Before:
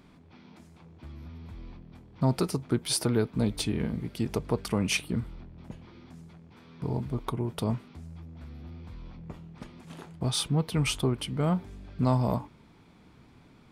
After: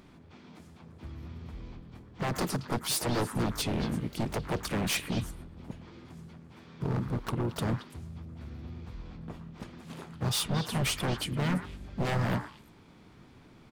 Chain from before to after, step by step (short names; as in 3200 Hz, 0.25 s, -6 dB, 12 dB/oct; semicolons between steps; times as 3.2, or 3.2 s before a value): wavefolder -24.5 dBFS; harmoniser -4 st -10 dB, +5 st -10 dB, +7 st -12 dB; delay with a stepping band-pass 0.113 s, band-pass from 1400 Hz, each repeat 1.4 oct, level -7 dB